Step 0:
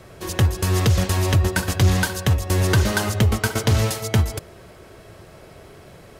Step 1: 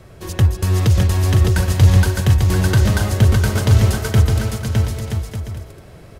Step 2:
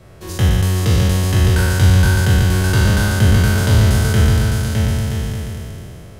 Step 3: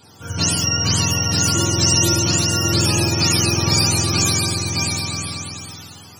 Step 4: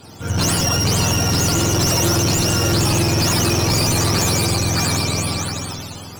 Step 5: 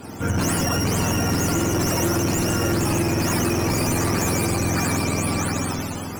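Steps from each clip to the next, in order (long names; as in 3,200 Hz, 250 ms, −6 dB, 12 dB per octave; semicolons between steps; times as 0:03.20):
low-shelf EQ 170 Hz +9 dB; on a send: bouncing-ball delay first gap 610 ms, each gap 0.6×, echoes 5; on the sum: level −2.5 dB
peak hold with a decay on every bin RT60 2.95 s; level −3 dB
frequency axis turned over on the octave scale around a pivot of 720 Hz
tube saturation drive 23 dB, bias 0.4; in parallel at −4 dB: sample-and-hold swept by an LFO 20×, swing 60% 1.4 Hz; on the sum: level +5.5 dB
octave-band graphic EQ 125/250/2,000/4,000 Hz −4/+5/+4/−12 dB; downward compressor, threshold −23 dBFS, peak gain reduction 8.5 dB; level +4 dB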